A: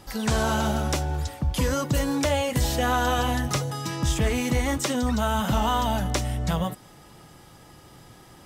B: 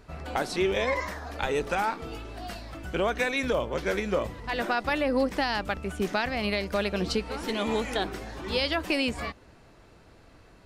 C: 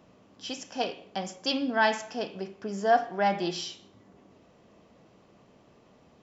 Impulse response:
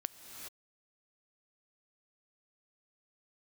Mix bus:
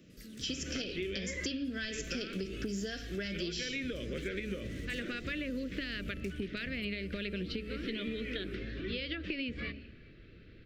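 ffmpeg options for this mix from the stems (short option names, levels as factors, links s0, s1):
-filter_complex "[0:a]asoftclip=type=tanh:threshold=0.0447,acompressor=threshold=0.0178:ratio=6,adelay=100,volume=0.178,asplit=2[s0][s1];[s1]volume=0.398[s2];[1:a]lowpass=f=3600:w=0.5412,lowpass=f=3600:w=1.3066,bandreject=f=70.64:t=h:w=4,bandreject=f=141.28:t=h:w=4,bandreject=f=211.92:t=h:w=4,bandreject=f=282.56:t=h:w=4,bandreject=f=353.2:t=h:w=4,bandreject=f=423.84:t=h:w=4,bandreject=f=494.48:t=h:w=4,bandreject=f=565.12:t=h:w=4,bandreject=f=635.76:t=h:w=4,bandreject=f=706.4:t=h:w=4,adelay=400,volume=1.12,asplit=2[s3][s4];[s4]volume=0.106[s5];[2:a]dynaudnorm=f=150:g=7:m=3.55,volume=1.26[s6];[3:a]atrim=start_sample=2205[s7];[s2][s5]amix=inputs=2:normalize=0[s8];[s8][s7]afir=irnorm=-1:irlink=0[s9];[s0][s3][s6][s9]amix=inputs=4:normalize=0,acrossover=split=98|2500[s10][s11][s12];[s10]acompressor=threshold=0.00891:ratio=4[s13];[s11]acompressor=threshold=0.0501:ratio=4[s14];[s12]acompressor=threshold=0.02:ratio=4[s15];[s13][s14][s15]amix=inputs=3:normalize=0,asuperstop=centerf=870:order=4:qfactor=0.64,acompressor=threshold=0.02:ratio=6"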